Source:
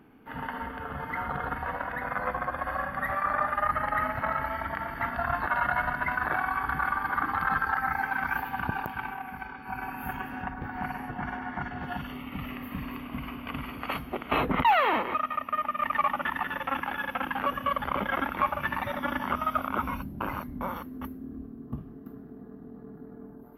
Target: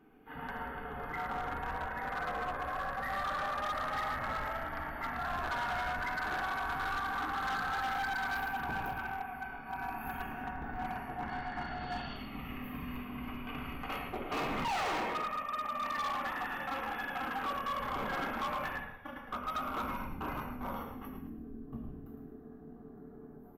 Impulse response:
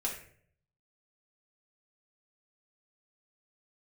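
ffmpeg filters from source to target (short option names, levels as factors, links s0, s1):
-filter_complex "[0:a]asettb=1/sr,asplit=3[s0][s1][s2];[s0]atrim=end=11.294[s3];[s1]atrim=start=11.29:end=12.16,asetpts=PTS-STARTPTS,afade=t=in:d=0.004:c=qsin,afade=t=out:st=0.866:d=0.004:c=qsin,lowpass=f=4400:t=q:w=11[s4];[s2]atrim=start=12.156[s5];[s3][s4]acrossfade=d=0.004:c1=hsin:c2=qsin[s6];[s6][s5]acrossfade=d=0.004:c1=qsin:c2=hsin,asplit=3[s7][s8][s9];[s7]afade=t=out:st=18.72:d=0.02[s10];[s8]agate=range=0.0794:threshold=0.0447:ratio=16:detection=peak,afade=t=in:st=18.72:d=0.02,afade=t=out:st=19.46:d=0.02[s11];[s9]afade=t=in:st=19.46:d=0.02[s12];[s10][s11][s12]amix=inputs=3:normalize=0,asplit=5[s13][s14][s15][s16][s17];[s14]adelay=110,afreqshift=-44,volume=0.422[s18];[s15]adelay=220,afreqshift=-88,volume=0.148[s19];[s16]adelay=330,afreqshift=-132,volume=0.0519[s20];[s17]adelay=440,afreqshift=-176,volume=0.018[s21];[s13][s18][s19][s20][s21]amix=inputs=5:normalize=0[s22];[1:a]atrim=start_sample=2205[s23];[s22][s23]afir=irnorm=-1:irlink=0,volume=14.1,asoftclip=hard,volume=0.0708,volume=0.376"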